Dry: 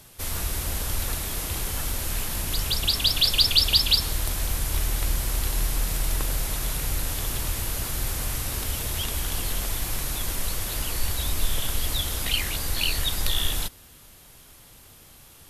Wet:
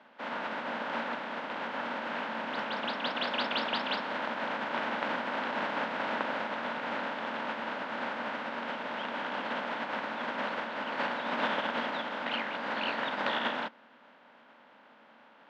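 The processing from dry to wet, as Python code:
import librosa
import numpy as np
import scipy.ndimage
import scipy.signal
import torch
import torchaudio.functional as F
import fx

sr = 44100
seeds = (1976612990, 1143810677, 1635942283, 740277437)

y = fx.spec_flatten(x, sr, power=0.61)
y = fx.cabinet(y, sr, low_hz=230.0, low_slope=24, high_hz=2700.0, hz=(230.0, 370.0, 580.0, 910.0, 1500.0, 2400.0), db=(10, -7, 7, 8, 6, -3))
y = y * 10.0 ** (-4.0 / 20.0)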